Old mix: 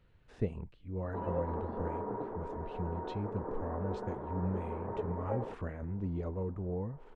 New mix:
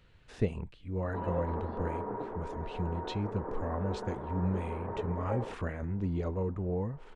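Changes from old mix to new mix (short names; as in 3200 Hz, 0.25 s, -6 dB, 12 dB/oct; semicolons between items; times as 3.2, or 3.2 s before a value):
speech +3.5 dB; master: add high shelf 2000 Hz +9.5 dB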